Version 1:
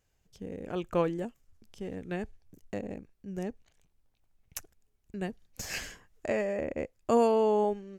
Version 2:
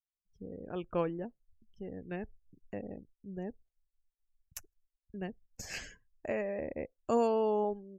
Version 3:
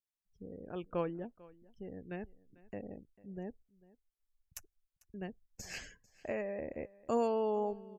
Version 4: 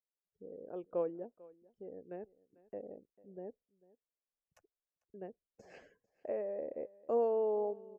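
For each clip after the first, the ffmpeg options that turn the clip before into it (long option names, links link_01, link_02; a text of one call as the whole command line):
ffmpeg -i in.wav -af "afftdn=noise_reduction=31:noise_floor=-48,volume=-4.5dB" out.wav
ffmpeg -i in.wav -af "aecho=1:1:446:0.0794,volume=-3dB" out.wav
ffmpeg -i in.wav -af "bandpass=frequency=500:width_type=q:width=1.9:csg=0,volume=2.5dB" out.wav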